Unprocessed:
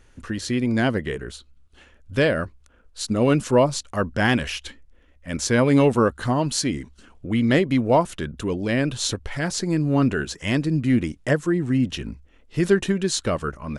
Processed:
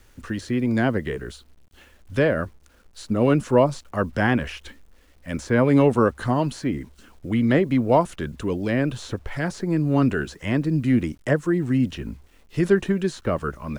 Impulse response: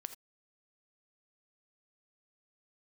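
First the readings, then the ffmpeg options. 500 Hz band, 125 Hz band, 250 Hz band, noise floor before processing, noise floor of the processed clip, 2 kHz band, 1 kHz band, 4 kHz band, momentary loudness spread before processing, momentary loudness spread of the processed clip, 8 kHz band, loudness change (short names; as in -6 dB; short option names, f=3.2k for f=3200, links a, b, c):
0.0 dB, 0.0 dB, 0.0 dB, -55 dBFS, -55 dBFS, -2.0 dB, 0.0 dB, -8.5 dB, 13 LU, 14 LU, -12.5 dB, -0.5 dB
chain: -filter_complex "[0:a]acrossover=split=340|540|2200[a][b][c][d];[d]acompressor=threshold=-42dB:ratio=6[e];[a][b][c][e]amix=inputs=4:normalize=0,acrusher=bits=9:mix=0:aa=0.000001"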